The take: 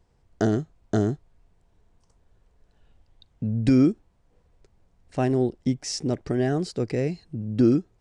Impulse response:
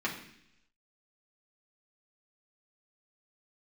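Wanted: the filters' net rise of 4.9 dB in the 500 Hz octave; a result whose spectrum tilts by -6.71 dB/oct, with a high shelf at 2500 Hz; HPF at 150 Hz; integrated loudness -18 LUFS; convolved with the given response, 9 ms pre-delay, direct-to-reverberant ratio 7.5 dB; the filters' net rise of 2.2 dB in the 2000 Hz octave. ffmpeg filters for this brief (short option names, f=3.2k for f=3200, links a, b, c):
-filter_complex "[0:a]highpass=150,equalizer=f=500:t=o:g=7,equalizer=f=2k:t=o:g=4,highshelf=f=2.5k:g=-3.5,asplit=2[a][b];[1:a]atrim=start_sample=2205,adelay=9[c];[b][c]afir=irnorm=-1:irlink=0,volume=-14.5dB[d];[a][d]amix=inputs=2:normalize=0,volume=4dB"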